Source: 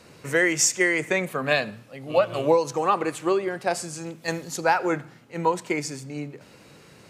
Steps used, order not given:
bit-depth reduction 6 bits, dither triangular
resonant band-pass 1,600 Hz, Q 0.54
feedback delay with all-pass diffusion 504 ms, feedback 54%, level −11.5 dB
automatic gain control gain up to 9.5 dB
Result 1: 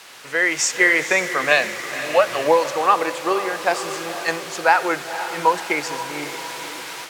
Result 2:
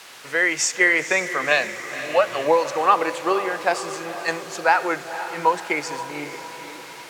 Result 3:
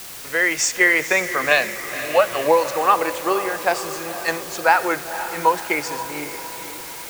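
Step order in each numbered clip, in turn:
feedback delay with all-pass diffusion, then bit-depth reduction, then resonant band-pass, then automatic gain control
automatic gain control, then feedback delay with all-pass diffusion, then bit-depth reduction, then resonant band-pass
resonant band-pass, then automatic gain control, then bit-depth reduction, then feedback delay with all-pass diffusion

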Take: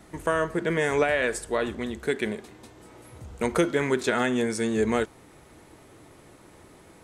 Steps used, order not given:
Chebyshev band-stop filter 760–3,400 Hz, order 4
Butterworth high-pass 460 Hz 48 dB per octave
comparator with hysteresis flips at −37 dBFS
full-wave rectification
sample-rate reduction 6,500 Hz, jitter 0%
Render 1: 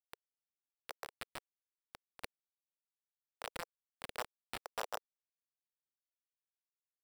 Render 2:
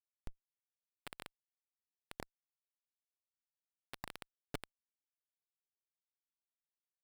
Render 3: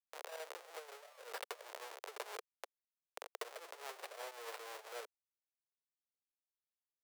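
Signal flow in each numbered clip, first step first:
full-wave rectification, then Chebyshev band-stop filter, then comparator with hysteresis, then Butterworth high-pass, then sample-rate reduction
Butterworth high-pass, then full-wave rectification, then Chebyshev band-stop filter, then sample-rate reduction, then comparator with hysteresis
Chebyshev band-stop filter, then sample-rate reduction, then comparator with hysteresis, then full-wave rectification, then Butterworth high-pass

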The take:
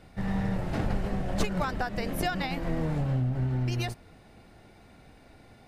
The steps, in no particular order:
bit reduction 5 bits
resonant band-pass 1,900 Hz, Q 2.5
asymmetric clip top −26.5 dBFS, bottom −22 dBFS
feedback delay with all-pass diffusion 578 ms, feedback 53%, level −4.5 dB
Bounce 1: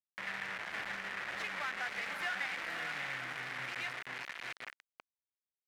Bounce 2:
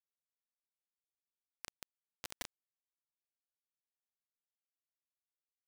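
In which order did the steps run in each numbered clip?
feedback delay with all-pass diffusion, then bit reduction, then resonant band-pass, then asymmetric clip
feedback delay with all-pass diffusion, then asymmetric clip, then resonant band-pass, then bit reduction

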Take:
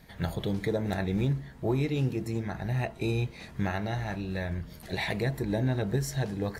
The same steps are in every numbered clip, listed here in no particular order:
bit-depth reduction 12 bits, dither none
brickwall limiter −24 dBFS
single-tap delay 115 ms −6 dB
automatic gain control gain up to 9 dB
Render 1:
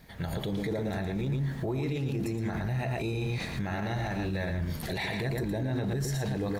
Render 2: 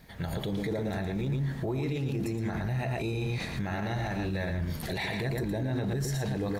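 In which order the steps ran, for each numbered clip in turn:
bit-depth reduction, then automatic gain control, then single-tap delay, then brickwall limiter
automatic gain control, then single-tap delay, then brickwall limiter, then bit-depth reduction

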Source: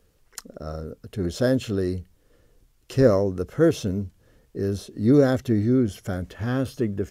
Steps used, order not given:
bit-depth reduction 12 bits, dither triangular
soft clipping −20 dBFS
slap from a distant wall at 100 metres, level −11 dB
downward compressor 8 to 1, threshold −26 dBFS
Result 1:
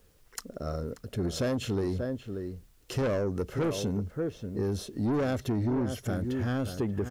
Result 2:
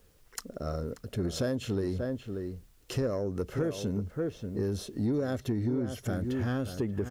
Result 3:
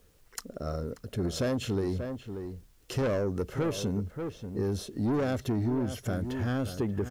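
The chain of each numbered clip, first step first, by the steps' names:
bit-depth reduction, then slap from a distant wall, then soft clipping, then downward compressor
bit-depth reduction, then slap from a distant wall, then downward compressor, then soft clipping
soft clipping, then slap from a distant wall, then downward compressor, then bit-depth reduction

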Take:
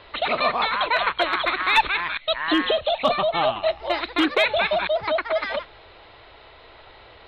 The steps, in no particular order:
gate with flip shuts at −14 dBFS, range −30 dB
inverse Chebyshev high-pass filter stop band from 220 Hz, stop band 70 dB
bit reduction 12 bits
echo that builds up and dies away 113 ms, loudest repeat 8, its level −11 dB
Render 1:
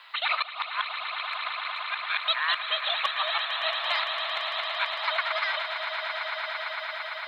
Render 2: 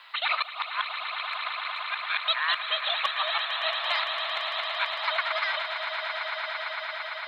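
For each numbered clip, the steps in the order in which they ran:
inverse Chebyshev high-pass filter, then bit reduction, then gate with flip, then echo that builds up and dies away
inverse Chebyshev high-pass filter, then gate with flip, then echo that builds up and dies away, then bit reduction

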